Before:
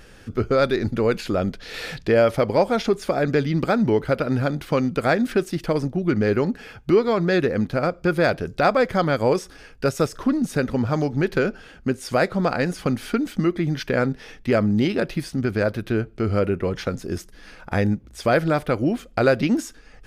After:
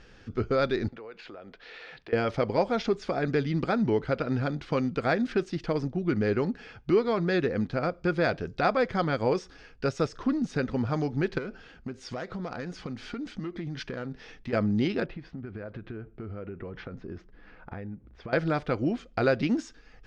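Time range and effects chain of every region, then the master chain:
0.88–2.13 three-band isolator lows -16 dB, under 360 Hz, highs -14 dB, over 3500 Hz + compressor 4:1, threshold -36 dBFS
11.38–14.53 self-modulated delay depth 0.082 ms + compressor, threshold -25 dBFS
15.06–18.33 LPF 2200 Hz + compressor 10:1, threshold -28 dBFS + mismatched tape noise reduction decoder only
whole clip: LPF 6000 Hz 24 dB/oct; notch 580 Hz, Q 15; gain -6 dB

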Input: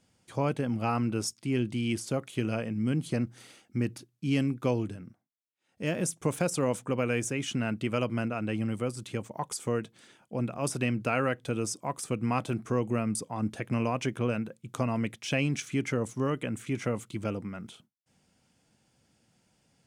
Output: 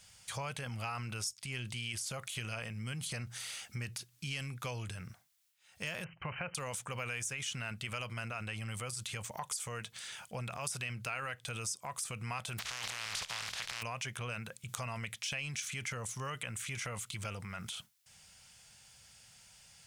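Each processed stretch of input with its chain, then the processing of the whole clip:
6.04–6.55 brick-wall FIR low-pass 3100 Hz + notch 450 Hz, Q 7.4
12.58–13.81 spectral contrast lowered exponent 0.21 + LPF 4300 Hz + negative-ratio compressor -39 dBFS
whole clip: passive tone stack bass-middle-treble 10-0-10; transient shaper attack -2 dB, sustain +6 dB; compressor 4:1, threshold -55 dBFS; gain +15.5 dB

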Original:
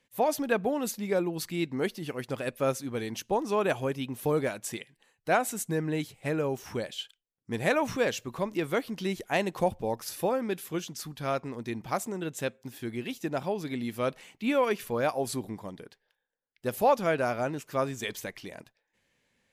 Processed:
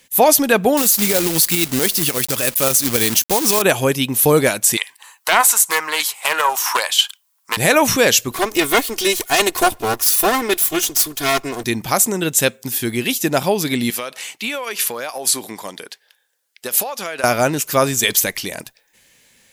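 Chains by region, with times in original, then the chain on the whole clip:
0.77–3.62 high shelf 3700 Hz +4.5 dB + companded quantiser 4-bit
4.77–7.57 transient shaper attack +6 dB, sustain +2 dB + resonant high-pass 1000 Hz, resonance Q 4.6 + Doppler distortion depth 0.16 ms
8.31–11.64 minimum comb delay 2.8 ms + low shelf 210 Hz -6.5 dB
13.9–17.24 weighting filter A + compressor 16:1, threshold -36 dBFS
whole clip: pre-emphasis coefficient 0.8; maximiser +28 dB; gain -1 dB

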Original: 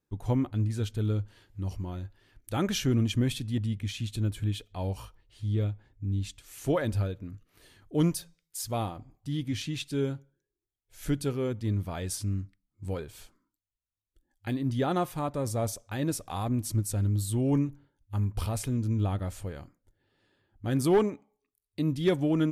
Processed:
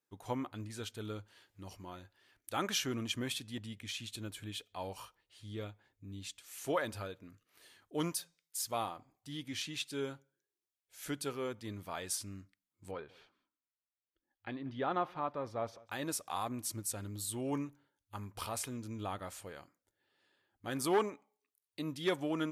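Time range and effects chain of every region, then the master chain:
12.91–15.88 air absorption 300 m + echo 0.186 s -22.5 dB
whole clip: HPF 750 Hz 6 dB/oct; dynamic EQ 1100 Hz, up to +4 dB, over -53 dBFS, Q 1.9; gain -1.5 dB

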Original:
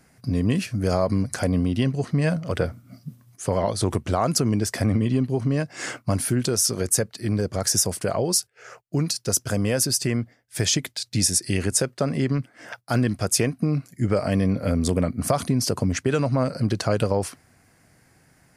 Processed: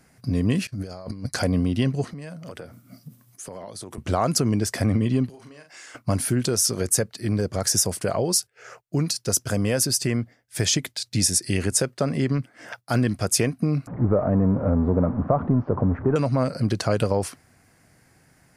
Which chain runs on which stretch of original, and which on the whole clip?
0.67–1.42 bell 4500 Hz +7.5 dB 0.36 oct + negative-ratio compressor -28 dBFS + expander -25 dBFS
2.13–3.98 HPF 140 Hz + high shelf 8300 Hz +8 dB + compressor 5:1, threshold -35 dBFS
5.29–5.95 HPF 1200 Hz 6 dB/oct + compressor 12:1, threshold -41 dBFS + doubler 41 ms -6 dB
13.87–16.16 zero-crossing step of -26.5 dBFS + LPF 1200 Hz 24 dB/oct
whole clip: dry

